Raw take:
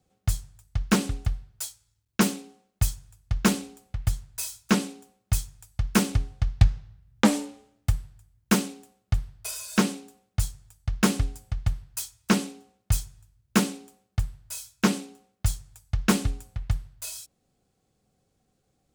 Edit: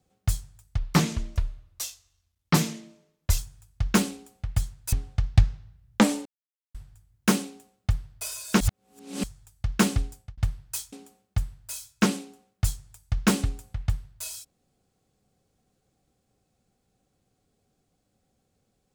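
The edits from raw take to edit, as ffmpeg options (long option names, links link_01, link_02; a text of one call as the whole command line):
ffmpeg -i in.wav -filter_complex "[0:a]asplit=10[link_01][link_02][link_03][link_04][link_05][link_06][link_07][link_08][link_09][link_10];[link_01]atrim=end=0.784[link_11];[link_02]atrim=start=0.78:end=2.89,asetpts=PTS-STARTPTS,asetrate=35721,aresample=44100[link_12];[link_03]atrim=start=2.886:end=4.432[link_13];[link_04]atrim=start=6.158:end=7.49,asetpts=PTS-STARTPTS,afade=type=out:start_time=1.328:duration=0.004:curve=hsin[link_14];[link_05]atrim=start=7.49:end=7.98,asetpts=PTS-STARTPTS,volume=0[link_15];[link_06]atrim=start=7.98:end=9.842,asetpts=PTS-STARTPTS,afade=type=in:duration=0.004:curve=hsin[link_16];[link_07]atrim=start=9.838:end=10.472,asetpts=PTS-STARTPTS,areverse[link_17];[link_08]atrim=start=10.468:end=11.61,asetpts=PTS-STARTPTS,afade=type=out:start_time=0.822:duration=0.32[link_18];[link_09]atrim=start=11.61:end=12.162,asetpts=PTS-STARTPTS,afade=type=in:duration=0.004:curve=hsin[link_19];[link_10]atrim=start=13.738[link_20];[link_11][link_12]acrossfade=duration=0.004:curve1=hsin:curve2=hsin[link_21];[link_21][link_13]acrossfade=duration=0.004:curve1=hsin:curve2=hsin[link_22];[link_14][link_15][link_16]concat=n=3:v=0:a=1[link_23];[link_22][link_23]acrossfade=duration=0.004:curve1=hsin:curve2=hsin[link_24];[link_24][link_17]acrossfade=duration=0.004:curve1=hsin:curve2=hsin[link_25];[link_18][link_19]concat=n=2:v=0:a=1[link_26];[link_25][link_26]acrossfade=duration=0.004:curve1=hsin:curve2=hsin[link_27];[link_27][link_20]acrossfade=duration=0.004:curve1=hsin:curve2=hsin" out.wav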